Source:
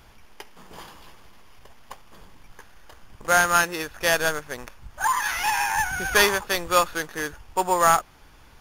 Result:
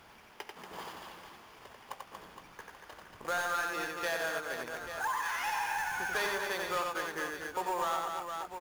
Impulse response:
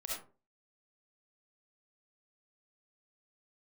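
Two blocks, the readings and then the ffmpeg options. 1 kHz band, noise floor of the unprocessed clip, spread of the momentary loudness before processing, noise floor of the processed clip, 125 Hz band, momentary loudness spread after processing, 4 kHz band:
-11.0 dB, -51 dBFS, 12 LU, -56 dBFS, -15.5 dB, 18 LU, -12.0 dB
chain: -filter_complex "[0:a]highpass=f=310:p=1,highshelf=f=4500:g=-9,acrossover=split=450[s0][s1];[s1]acrusher=bits=3:mode=log:mix=0:aa=0.000001[s2];[s0][s2]amix=inputs=2:normalize=0,asoftclip=type=tanh:threshold=0.141,asplit=2[s3][s4];[s4]aecho=0:1:90|234|464.4|833|1423:0.631|0.398|0.251|0.158|0.1[s5];[s3][s5]amix=inputs=2:normalize=0,acompressor=threshold=0.0112:ratio=2"

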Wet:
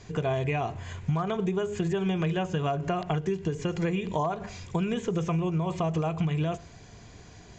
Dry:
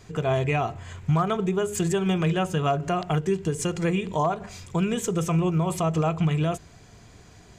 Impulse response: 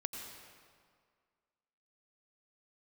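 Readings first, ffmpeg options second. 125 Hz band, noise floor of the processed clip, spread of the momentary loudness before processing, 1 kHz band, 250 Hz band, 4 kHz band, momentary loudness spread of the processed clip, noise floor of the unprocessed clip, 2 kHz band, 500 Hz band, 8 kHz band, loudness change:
-4.0 dB, -50 dBFS, 4 LU, -4.5 dB, -3.5 dB, -4.5 dB, 4 LU, -50 dBFS, -4.0 dB, -3.5 dB, -13.0 dB, -4.0 dB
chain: -filter_complex "[0:a]asplit=2[s0][s1];[1:a]atrim=start_sample=2205,afade=t=out:st=0.16:d=0.01,atrim=end_sample=7497[s2];[s1][s2]afir=irnorm=-1:irlink=0,volume=0.15[s3];[s0][s3]amix=inputs=2:normalize=0,acompressor=threshold=0.0631:ratio=6,bandreject=f=1300:w=12,acrossover=split=3400[s4][s5];[s5]acompressor=threshold=0.00501:ratio=4:attack=1:release=60[s6];[s4][s6]amix=inputs=2:normalize=0,aresample=16000,aresample=44100"

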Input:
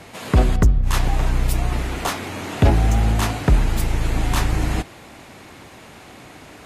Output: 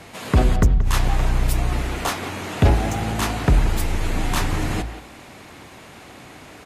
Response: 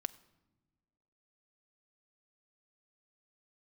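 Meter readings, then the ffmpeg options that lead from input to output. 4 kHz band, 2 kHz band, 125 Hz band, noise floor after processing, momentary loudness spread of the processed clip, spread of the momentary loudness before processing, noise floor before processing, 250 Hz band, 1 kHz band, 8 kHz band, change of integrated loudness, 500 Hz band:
0.0 dB, +0.5 dB, -1.5 dB, -43 dBFS, 23 LU, 8 LU, -43 dBFS, -0.5 dB, 0.0 dB, 0.0 dB, -1.0 dB, -0.5 dB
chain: -filter_complex "[0:a]bandreject=f=55.35:t=h:w=4,bandreject=f=110.7:t=h:w=4,bandreject=f=166.05:t=h:w=4,bandreject=f=221.4:t=h:w=4,bandreject=f=276.75:t=h:w=4,bandreject=f=332.1:t=h:w=4,bandreject=f=387.45:t=h:w=4,bandreject=f=442.8:t=h:w=4,bandreject=f=498.15:t=h:w=4,bandreject=f=553.5:t=h:w=4,bandreject=f=608.85:t=h:w=4,bandreject=f=664.2:t=h:w=4,bandreject=f=719.55:t=h:w=4,bandreject=f=774.9:t=h:w=4,bandreject=f=830.25:t=h:w=4,bandreject=f=885.6:t=h:w=4,bandreject=f=940.95:t=h:w=4,asplit=2[s0][s1];[s1]adelay=180,highpass=300,lowpass=3400,asoftclip=type=hard:threshold=0.188,volume=0.282[s2];[s0][s2]amix=inputs=2:normalize=0"

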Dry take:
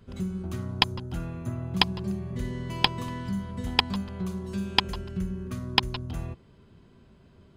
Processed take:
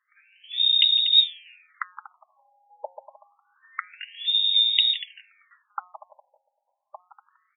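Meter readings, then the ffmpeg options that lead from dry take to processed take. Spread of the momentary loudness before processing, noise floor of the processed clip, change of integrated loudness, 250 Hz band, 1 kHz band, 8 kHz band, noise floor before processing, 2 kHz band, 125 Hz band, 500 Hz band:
9 LU, -79 dBFS, +10.5 dB, under -40 dB, -7.5 dB, under -30 dB, -56 dBFS, -4.5 dB, under -40 dB, -10.5 dB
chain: -filter_complex "[0:a]aemphasis=mode=reproduction:type=riaa,asplit=2[s0][s1];[s1]adelay=240,highpass=300,lowpass=3400,asoftclip=type=hard:threshold=0.237,volume=0.282[s2];[s0][s2]amix=inputs=2:normalize=0,lowpass=f=3200:t=q:w=0.5098,lowpass=f=3200:t=q:w=0.6013,lowpass=f=3200:t=q:w=0.9,lowpass=f=3200:t=q:w=2.563,afreqshift=-3800,bandreject=f=700:w=14,bandreject=f=180.6:t=h:w=4,bandreject=f=361.2:t=h:w=4,bandreject=f=541.8:t=h:w=4,bandreject=f=722.4:t=h:w=4,bandreject=f=903:t=h:w=4,bandreject=f=1083.6:t=h:w=4,bandreject=f=1264.2:t=h:w=4,bandreject=f=1444.8:t=h:w=4,bandreject=f=1625.4:t=h:w=4,bandreject=f=1806:t=h:w=4,bandreject=f=1986.6:t=h:w=4,bandreject=f=2167.2:t=h:w=4,bandreject=f=2347.8:t=h:w=4,bandreject=f=2528.4:t=h:w=4,bandreject=f=2709:t=h:w=4,bandreject=f=2889.6:t=h:w=4,bandreject=f=3070.2:t=h:w=4,asplit=2[s3][s4];[s4]adelay=1165,lowpass=f=1700:p=1,volume=0.422,asplit=2[s5][s6];[s6]adelay=1165,lowpass=f=1700:p=1,volume=0.3,asplit=2[s7][s8];[s8]adelay=1165,lowpass=f=1700:p=1,volume=0.3,asplit=2[s9][s10];[s10]adelay=1165,lowpass=f=1700:p=1,volume=0.3[s11];[s5][s7][s9][s11]amix=inputs=4:normalize=0[s12];[s3][s12]amix=inputs=2:normalize=0,afftfilt=real='re*between(b*sr/1024,680*pow(2900/680,0.5+0.5*sin(2*PI*0.27*pts/sr))/1.41,680*pow(2900/680,0.5+0.5*sin(2*PI*0.27*pts/sr))*1.41)':imag='im*between(b*sr/1024,680*pow(2900/680,0.5+0.5*sin(2*PI*0.27*pts/sr))/1.41,680*pow(2900/680,0.5+0.5*sin(2*PI*0.27*pts/sr))*1.41)':win_size=1024:overlap=0.75,volume=1.26"

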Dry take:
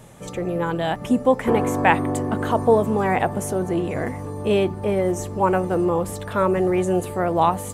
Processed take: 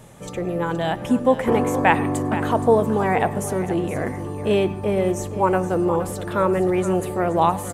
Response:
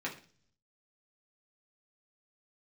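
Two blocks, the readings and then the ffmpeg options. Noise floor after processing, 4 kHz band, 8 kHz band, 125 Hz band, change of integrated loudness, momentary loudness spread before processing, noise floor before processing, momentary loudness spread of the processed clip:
-33 dBFS, 0.0 dB, 0.0 dB, +0.5 dB, +0.5 dB, 7 LU, -34 dBFS, 7 LU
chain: -filter_complex "[0:a]aecho=1:1:471:0.224,asplit=2[s0][s1];[1:a]atrim=start_sample=2205,adelay=100[s2];[s1][s2]afir=irnorm=-1:irlink=0,volume=0.0944[s3];[s0][s3]amix=inputs=2:normalize=0"

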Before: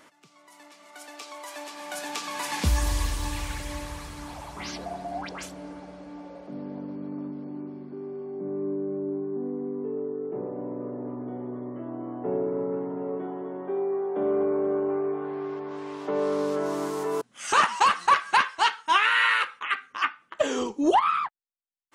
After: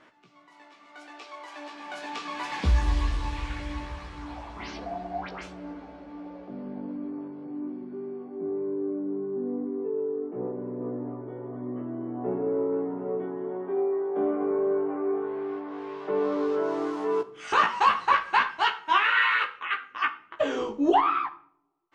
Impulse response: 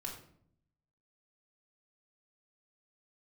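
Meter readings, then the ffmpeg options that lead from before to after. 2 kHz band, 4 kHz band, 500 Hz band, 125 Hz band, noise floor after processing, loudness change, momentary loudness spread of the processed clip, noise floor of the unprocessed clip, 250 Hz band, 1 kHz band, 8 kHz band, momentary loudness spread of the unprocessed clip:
-1.0 dB, -3.5 dB, 0.0 dB, +0.5 dB, -56 dBFS, -0.5 dB, 17 LU, -59 dBFS, +0.5 dB, -1.0 dB, under -10 dB, 17 LU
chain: -filter_complex "[0:a]lowpass=3400,flanger=delay=15.5:depth=2.8:speed=0.75,asplit=2[s0][s1];[1:a]atrim=start_sample=2205,highshelf=f=8000:g=7.5[s2];[s1][s2]afir=irnorm=-1:irlink=0,volume=0.473[s3];[s0][s3]amix=inputs=2:normalize=0"

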